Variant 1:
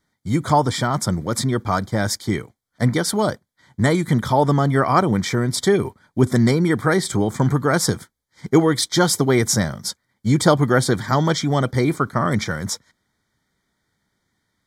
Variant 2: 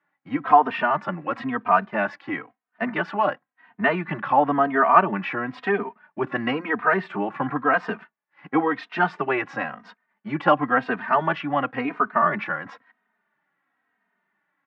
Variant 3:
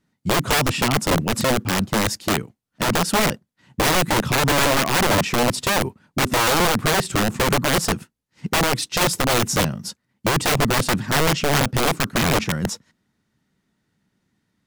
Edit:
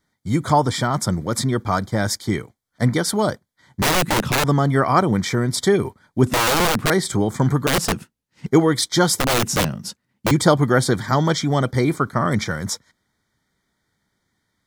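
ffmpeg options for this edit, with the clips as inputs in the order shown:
-filter_complex "[2:a]asplit=4[a][b][c][d];[0:a]asplit=5[e][f][g][h][i];[e]atrim=end=3.822[j];[a]atrim=start=3.818:end=4.442[k];[f]atrim=start=4.438:end=6.272[l];[b]atrim=start=6.268:end=6.902[m];[g]atrim=start=6.898:end=7.672[n];[c]atrim=start=7.668:end=8.462[o];[h]atrim=start=8.458:end=9.192[p];[d]atrim=start=9.188:end=10.312[q];[i]atrim=start=10.308[r];[j][k]acrossfade=d=0.004:c1=hsin:c2=hsin[s];[s][l]acrossfade=d=0.004:c1=hsin:c2=hsin[t];[t][m]acrossfade=d=0.004:c1=hsin:c2=hsin[u];[u][n]acrossfade=d=0.004:c1=hsin:c2=hsin[v];[v][o]acrossfade=d=0.004:c1=hsin:c2=hsin[w];[w][p]acrossfade=d=0.004:c1=hsin:c2=hsin[x];[x][q]acrossfade=d=0.004:c1=hsin:c2=hsin[y];[y][r]acrossfade=d=0.004:c1=hsin:c2=hsin"

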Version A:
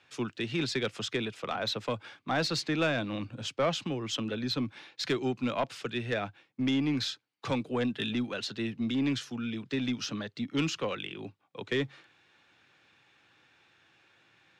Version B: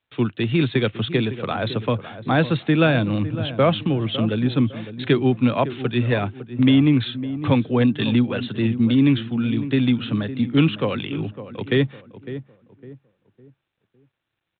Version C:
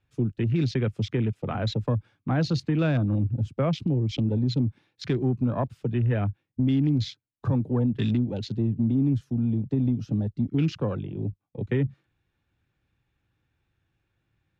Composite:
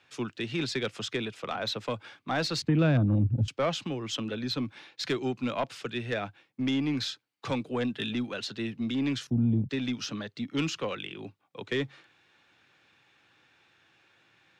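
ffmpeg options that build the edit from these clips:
-filter_complex "[2:a]asplit=2[a][b];[0:a]asplit=3[c][d][e];[c]atrim=end=2.622[f];[a]atrim=start=2.618:end=3.482[g];[d]atrim=start=3.478:end=9.272[h];[b]atrim=start=9.268:end=9.692[i];[e]atrim=start=9.688[j];[f][g]acrossfade=d=0.004:c1=hsin:c2=hsin[k];[k][h]acrossfade=d=0.004:c1=hsin:c2=hsin[l];[l][i]acrossfade=d=0.004:c1=hsin:c2=hsin[m];[m][j]acrossfade=d=0.004:c1=hsin:c2=hsin"

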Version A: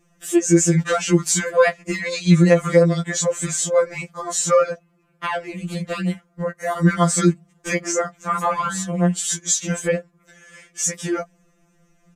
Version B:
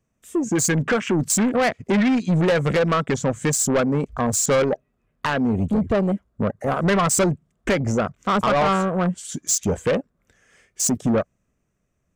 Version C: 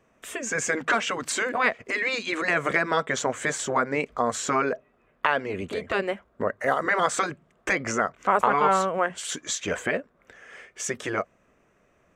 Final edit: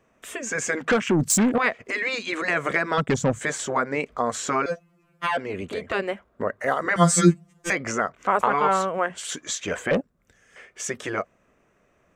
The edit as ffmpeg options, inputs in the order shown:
-filter_complex "[1:a]asplit=3[a][b][c];[0:a]asplit=2[d][e];[2:a]asplit=6[f][g][h][i][j][k];[f]atrim=end=0.912[l];[a]atrim=start=0.908:end=1.582[m];[g]atrim=start=1.578:end=2.982[n];[b]atrim=start=2.978:end=3.412[o];[h]atrim=start=3.408:end=4.662[p];[d]atrim=start=4.658:end=5.372[q];[i]atrim=start=5.368:end=6.962[r];[e]atrim=start=6.958:end=7.702[s];[j]atrim=start=7.698:end=9.912[t];[c]atrim=start=9.908:end=10.562[u];[k]atrim=start=10.558[v];[l][m]acrossfade=d=0.004:c1=hsin:c2=hsin[w];[w][n]acrossfade=d=0.004:c1=hsin:c2=hsin[x];[x][o]acrossfade=d=0.004:c1=hsin:c2=hsin[y];[y][p]acrossfade=d=0.004:c1=hsin:c2=hsin[z];[z][q]acrossfade=d=0.004:c1=hsin:c2=hsin[aa];[aa][r]acrossfade=d=0.004:c1=hsin:c2=hsin[ab];[ab][s]acrossfade=d=0.004:c1=hsin:c2=hsin[ac];[ac][t]acrossfade=d=0.004:c1=hsin:c2=hsin[ad];[ad][u]acrossfade=d=0.004:c1=hsin:c2=hsin[ae];[ae][v]acrossfade=d=0.004:c1=hsin:c2=hsin"

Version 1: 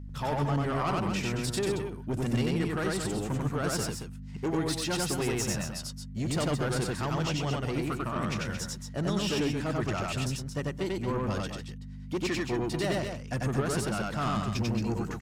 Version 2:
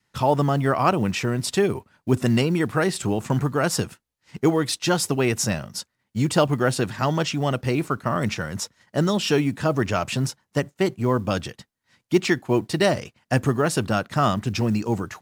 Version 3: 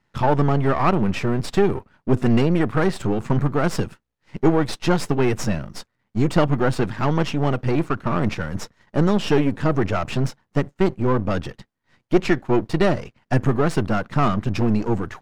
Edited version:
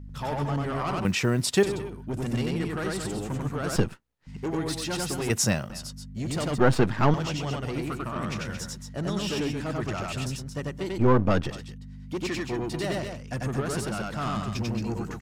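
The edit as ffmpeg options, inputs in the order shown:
-filter_complex "[1:a]asplit=2[a][b];[2:a]asplit=3[c][d][e];[0:a]asplit=6[f][g][h][i][j][k];[f]atrim=end=1.052[l];[a]atrim=start=1.048:end=1.632[m];[g]atrim=start=1.628:end=3.762[n];[c]atrim=start=3.758:end=4.272[o];[h]atrim=start=4.268:end=5.302[p];[b]atrim=start=5.298:end=5.702[q];[i]atrim=start=5.698:end=6.582[r];[d]atrim=start=6.578:end=7.142[s];[j]atrim=start=7.138:end=10.992[t];[e]atrim=start=10.988:end=11.512[u];[k]atrim=start=11.508[v];[l][m]acrossfade=d=0.004:c1=hsin:c2=hsin[w];[w][n]acrossfade=d=0.004:c1=hsin:c2=hsin[x];[x][o]acrossfade=d=0.004:c1=hsin:c2=hsin[y];[y][p]acrossfade=d=0.004:c1=hsin:c2=hsin[z];[z][q]acrossfade=d=0.004:c1=hsin:c2=hsin[aa];[aa][r]acrossfade=d=0.004:c1=hsin:c2=hsin[ab];[ab][s]acrossfade=d=0.004:c1=hsin:c2=hsin[ac];[ac][t]acrossfade=d=0.004:c1=hsin:c2=hsin[ad];[ad][u]acrossfade=d=0.004:c1=hsin:c2=hsin[ae];[ae][v]acrossfade=d=0.004:c1=hsin:c2=hsin"

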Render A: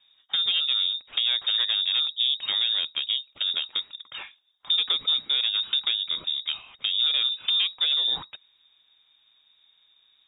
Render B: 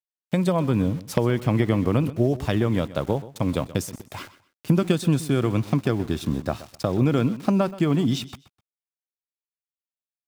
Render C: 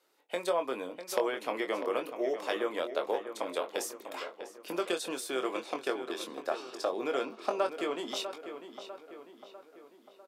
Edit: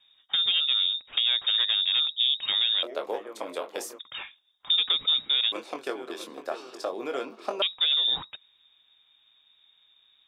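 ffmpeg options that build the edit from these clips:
-filter_complex "[2:a]asplit=2[a][b];[0:a]asplit=3[c][d][e];[c]atrim=end=2.832[f];[a]atrim=start=2.828:end=3.992[g];[d]atrim=start=3.988:end=5.522[h];[b]atrim=start=5.518:end=7.622[i];[e]atrim=start=7.618[j];[f][g]acrossfade=d=0.004:c1=hsin:c2=hsin[k];[k][h]acrossfade=d=0.004:c1=hsin:c2=hsin[l];[l][i]acrossfade=d=0.004:c1=hsin:c2=hsin[m];[m][j]acrossfade=d=0.004:c1=hsin:c2=hsin"

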